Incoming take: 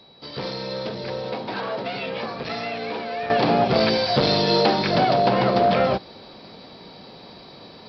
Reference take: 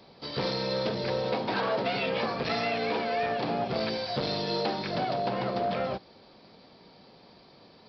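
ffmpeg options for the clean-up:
ffmpeg -i in.wav -af "bandreject=frequency=3900:width=30,asetnsamples=nb_out_samples=441:pad=0,asendcmd='3.3 volume volume -11dB',volume=0dB" out.wav

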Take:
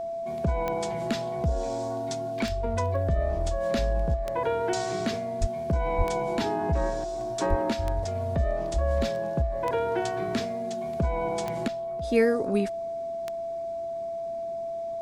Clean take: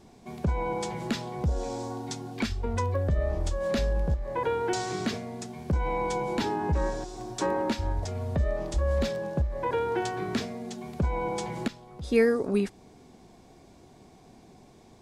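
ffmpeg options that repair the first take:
ffmpeg -i in.wav -filter_complex "[0:a]adeclick=threshold=4,bandreject=frequency=670:width=30,asplit=3[link_01][link_02][link_03];[link_01]afade=type=out:start_time=5.4:duration=0.02[link_04];[link_02]highpass=frequency=140:width=0.5412,highpass=frequency=140:width=1.3066,afade=type=in:start_time=5.4:duration=0.02,afade=type=out:start_time=5.52:duration=0.02[link_05];[link_03]afade=type=in:start_time=5.52:duration=0.02[link_06];[link_04][link_05][link_06]amix=inputs=3:normalize=0,asplit=3[link_07][link_08][link_09];[link_07]afade=type=out:start_time=5.97:duration=0.02[link_10];[link_08]highpass=frequency=140:width=0.5412,highpass=frequency=140:width=1.3066,afade=type=in:start_time=5.97:duration=0.02,afade=type=out:start_time=6.09:duration=0.02[link_11];[link_09]afade=type=in:start_time=6.09:duration=0.02[link_12];[link_10][link_11][link_12]amix=inputs=3:normalize=0,asplit=3[link_13][link_14][link_15];[link_13]afade=type=out:start_time=7.49:duration=0.02[link_16];[link_14]highpass=frequency=140:width=0.5412,highpass=frequency=140:width=1.3066,afade=type=in:start_time=7.49:duration=0.02,afade=type=out:start_time=7.61:duration=0.02[link_17];[link_15]afade=type=in:start_time=7.61:duration=0.02[link_18];[link_16][link_17][link_18]amix=inputs=3:normalize=0" out.wav

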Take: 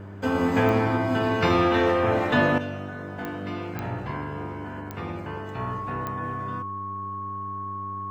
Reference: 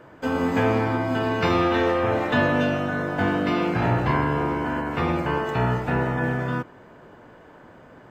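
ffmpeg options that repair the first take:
ffmpeg -i in.wav -af "adeclick=threshold=4,bandreject=frequency=99:width_type=h:width=4,bandreject=frequency=198:width_type=h:width=4,bandreject=frequency=297:width_type=h:width=4,bandreject=frequency=396:width_type=h:width=4,bandreject=frequency=1100:width=30,asetnsamples=nb_out_samples=441:pad=0,asendcmd='2.58 volume volume 10.5dB',volume=0dB" out.wav

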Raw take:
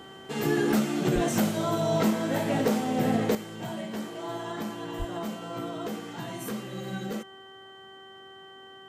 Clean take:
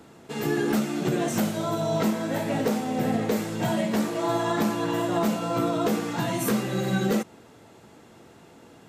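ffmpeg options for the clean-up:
ffmpeg -i in.wav -filter_complex "[0:a]bandreject=frequency=385.5:width_type=h:width=4,bandreject=frequency=771:width_type=h:width=4,bandreject=frequency=1156.5:width_type=h:width=4,bandreject=frequency=1542:width_type=h:width=4,bandreject=frequency=1927.5:width_type=h:width=4,bandreject=frequency=3100:width=30,asplit=3[link_01][link_02][link_03];[link_01]afade=type=out:start_time=1.14:duration=0.02[link_04];[link_02]highpass=frequency=140:width=0.5412,highpass=frequency=140:width=1.3066,afade=type=in:start_time=1.14:duration=0.02,afade=type=out:start_time=1.26:duration=0.02[link_05];[link_03]afade=type=in:start_time=1.26:duration=0.02[link_06];[link_04][link_05][link_06]amix=inputs=3:normalize=0,asplit=3[link_07][link_08][link_09];[link_07]afade=type=out:start_time=4.98:duration=0.02[link_10];[link_08]highpass=frequency=140:width=0.5412,highpass=frequency=140:width=1.3066,afade=type=in:start_time=4.98:duration=0.02,afade=type=out:start_time=5.1:duration=0.02[link_11];[link_09]afade=type=in:start_time=5.1:duration=0.02[link_12];[link_10][link_11][link_12]amix=inputs=3:normalize=0,asetnsamples=nb_out_samples=441:pad=0,asendcmd='3.35 volume volume 10dB',volume=0dB" out.wav

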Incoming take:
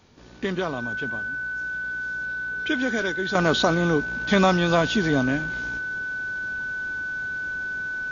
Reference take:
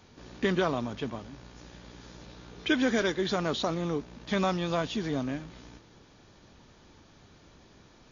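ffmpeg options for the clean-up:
ffmpeg -i in.wav -af "bandreject=frequency=1500:width=30,asetnsamples=nb_out_samples=441:pad=0,asendcmd='3.35 volume volume -9dB',volume=0dB" out.wav

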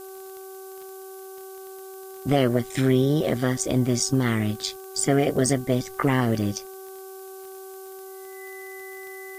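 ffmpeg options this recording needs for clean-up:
ffmpeg -i in.wav -af "adeclick=threshold=4,bandreject=frequency=382.2:width_type=h:width=4,bandreject=frequency=764.4:width_type=h:width=4,bandreject=frequency=1146.6:width_type=h:width=4,bandreject=frequency=1528.8:width_type=h:width=4,bandreject=frequency=2000:width=30,afftdn=noise_reduction=29:noise_floor=-40" out.wav

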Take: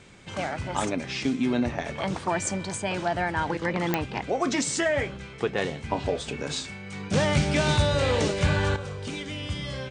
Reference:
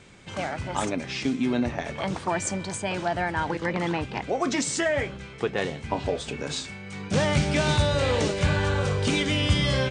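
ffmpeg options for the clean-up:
ffmpeg -i in.wav -af "adeclick=threshold=4,asetnsamples=nb_out_samples=441:pad=0,asendcmd='8.76 volume volume 10dB',volume=0dB" out.wav

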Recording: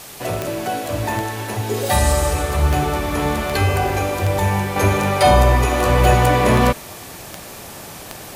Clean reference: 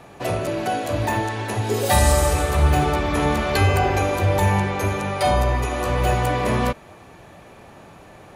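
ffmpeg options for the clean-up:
ffmpeg -i in.wav -af "adeclick=threshold=4,afwtdn=0.014,asetnsamples=nb_out_samples=441:pad=0,asendcmd='4.76 volume volume -6.5dB',volume=0dB" out.wav

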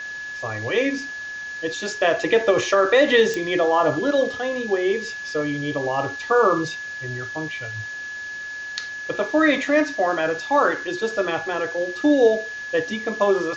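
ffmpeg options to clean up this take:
ffmpeg -i in.wav -af "adeclick=threshold=4,bandreject=frequency=1700:width=30,afwtdn=0.0089" out.wav

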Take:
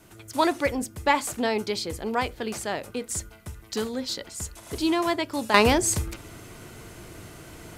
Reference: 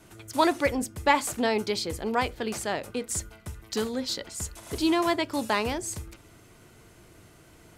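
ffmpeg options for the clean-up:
ffmpeg -i in.wav -af "agate=range=-21dB:threshold=-38dB,asetnsamples=nb_out_samples=441:pad=0,asendcmd='5.54 volume volume -10dB',volume=0dB" out.wav

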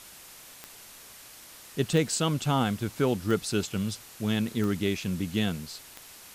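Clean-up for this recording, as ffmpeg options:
ffmpeg -i in.wav -af "adeclick=threshold=4,afwtdn=0.0045" out.wav

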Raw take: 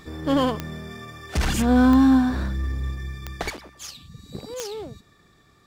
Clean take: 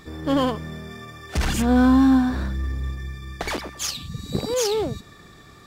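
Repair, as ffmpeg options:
ffmpeg -i in.wav -af "adeclick=threshold=4,asetnsamples=nb_out_samples=441:pad=0,asendcmd='3.5 volume volume 10.5dB',volume=0dB" out.wav

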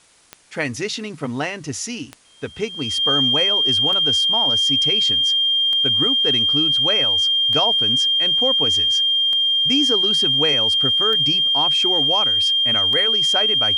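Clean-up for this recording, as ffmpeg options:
ffmpeg -i in.wav -af "adeclick=threshold=4,bandreject=frequency=3200:width=30,agate=range=-21dB:threshold=-24dB" out.wav

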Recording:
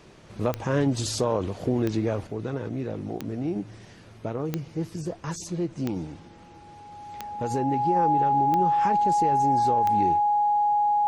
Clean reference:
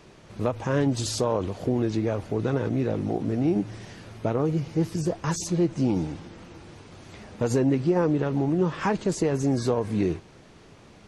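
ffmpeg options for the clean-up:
ffmpeg -i in.wav -af "adeclick=threshold=4,bandreject=frequency=830:width=30,asetnsamples=nb_out_samples=441:pad=0,asendcmd='2.27 volume volume 5.5dB',volume=0dB" out.wav

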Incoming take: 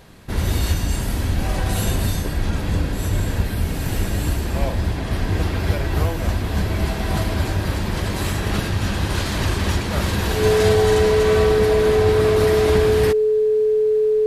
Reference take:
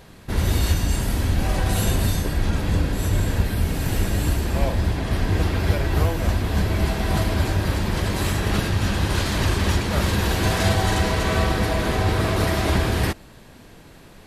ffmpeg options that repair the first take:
ffmpeg -i in.wav -af "bandreject=frequency=430:width=30" out.wav

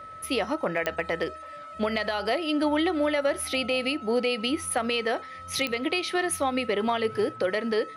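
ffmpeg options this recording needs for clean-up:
ffmpeg -i in.wav -af "adeclick=threshold=4,bandreject=frequency=1300:width=30" out.wav

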